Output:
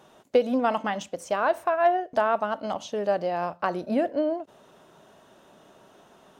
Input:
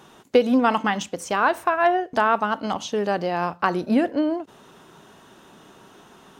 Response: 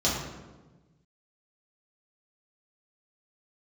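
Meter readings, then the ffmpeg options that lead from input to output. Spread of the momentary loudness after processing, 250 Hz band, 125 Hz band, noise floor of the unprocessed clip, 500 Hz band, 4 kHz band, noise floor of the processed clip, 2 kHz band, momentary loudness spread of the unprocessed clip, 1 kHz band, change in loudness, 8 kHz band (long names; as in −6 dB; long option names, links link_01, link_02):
8 LU, −7.0 dB, −7.5 dB, −51 dBFS, −1.5 dB, −7.5 dB, −56 dBFS, −7.0 dB, 7 LU, −4.5 dB, −4.0 dB, can't be measured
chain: -af "equalizer=frequency=610:width=3:gain=10.5,volume=-7.5dB"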